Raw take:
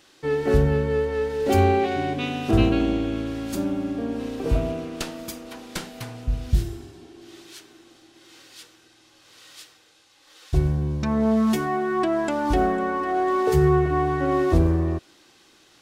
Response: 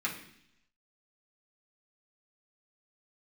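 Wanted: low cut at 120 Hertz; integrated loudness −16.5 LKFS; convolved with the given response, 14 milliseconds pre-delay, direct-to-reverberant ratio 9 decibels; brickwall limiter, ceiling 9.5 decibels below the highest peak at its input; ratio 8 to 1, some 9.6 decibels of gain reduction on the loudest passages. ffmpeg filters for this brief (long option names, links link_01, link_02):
-filter_complex "[0:a]highpass=120,acompressor=threshold=-25dB:ratio=8,alimiter=limit=-23.5dB:level=0:latency=1,asplit=2[link_01][link_02];[1:a]atrim=start_sample=2205,adelay=14[link_03];[link_02][link_03]afir=irnorm=-1:irlink=0,volume=-15dB[link_04];[link_01][link_04]amix=inputs=2:normalize=0,volume=16dB"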